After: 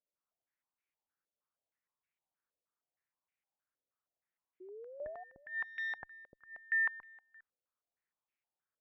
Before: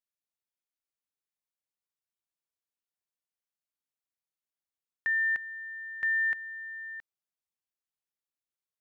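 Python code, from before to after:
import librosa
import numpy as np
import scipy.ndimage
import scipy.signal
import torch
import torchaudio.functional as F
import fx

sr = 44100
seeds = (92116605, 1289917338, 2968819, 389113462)

y = fx.sample_sort(x, sr, block=8, at=(5.49, 5.97), fade=0.02)
y = fx.env_lowpass_down(y, sr, base_hz=320.0, full_db=-29.5)
y = fx.over_compress(y, sr, threshold_db=-35.0, ratio=-1.0)
y = fx.cheby_harmonics(y, sr, harmonics=(3, 4, 5), levels_db=(-16, -29, -23), full_scale_db=-22.5)
y = fx.spec_paint(y, sr, seeds[0], shape='rise', start_s=4.6, length_s=0.64, low_hz=360.0, high_hz=750.0, level_db=-51.0)
y = y + 10.0 ** (-22.0 / 20.0) * np.pad(y, (int(405 * sr / 1000.0), 0))[:len(y)]
y = fx.filter_held_lowpass(y, sr, hz=6.4, low_hz=550.0, high_hz=2300.0)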